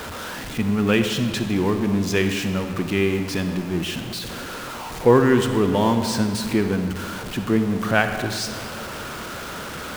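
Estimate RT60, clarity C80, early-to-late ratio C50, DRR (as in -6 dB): 2.3 s, 8.0 dB, 7.0 dB, 6.5 dB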